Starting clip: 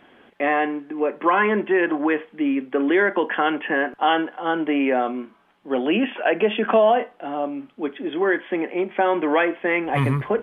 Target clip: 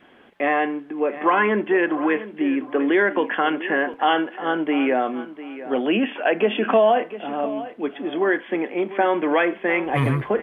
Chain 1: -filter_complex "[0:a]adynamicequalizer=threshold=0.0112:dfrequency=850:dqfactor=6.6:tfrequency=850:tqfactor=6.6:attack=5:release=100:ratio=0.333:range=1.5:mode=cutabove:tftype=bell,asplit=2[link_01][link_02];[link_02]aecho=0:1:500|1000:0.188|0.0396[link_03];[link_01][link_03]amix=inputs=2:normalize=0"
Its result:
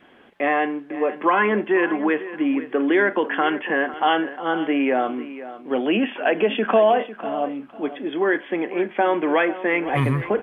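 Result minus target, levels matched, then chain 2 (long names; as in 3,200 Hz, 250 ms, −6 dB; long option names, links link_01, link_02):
echo 199 ms early
-filter_complex "[0:a]adynamicequalizer=threshold=0.0112:dfrequency=850:dqfactor=6.6:tfrequency=850:tqfactor=6.6:attack=5:release=100:ratio=0.333:range=1.5:mode=cutabove:tftype=bell,asplit=2[link_01][link_02];[link_02]aecho=0:1:699|1398:0.188|0.0396[link_03];[link_01][link_03]amix=inputs=2:normalize=0"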